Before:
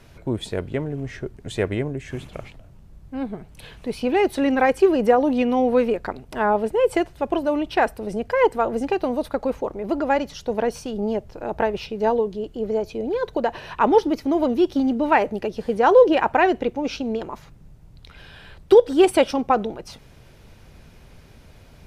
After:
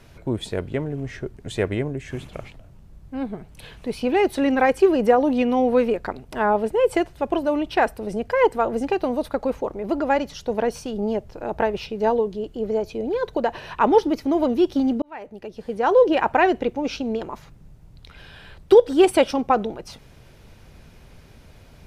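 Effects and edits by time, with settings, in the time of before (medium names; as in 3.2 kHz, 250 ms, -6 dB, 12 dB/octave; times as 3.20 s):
15.02–16.31 s: fade in linear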